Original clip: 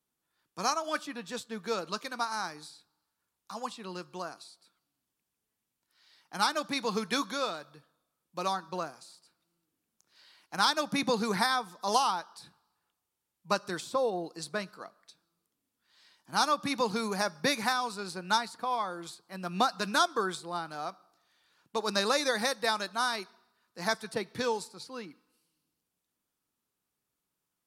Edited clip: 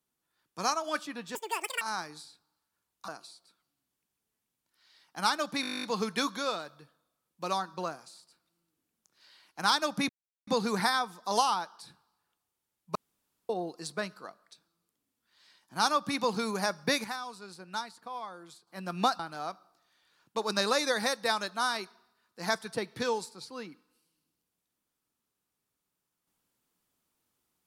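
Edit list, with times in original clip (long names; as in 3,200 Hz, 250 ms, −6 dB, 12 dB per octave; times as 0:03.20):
0:01.35–0:02.27: play speed 199%
0:03.54–0:04.25: remove
0:06.78: stutter 0.02 s, 12 plays
0:11.04: splice in silence 0.38 s
0:13.52–0:14.06: fill with room tone
0:17.61–0:19.24: clip gain −8.5 dB
0:19.76–0:20.58: remove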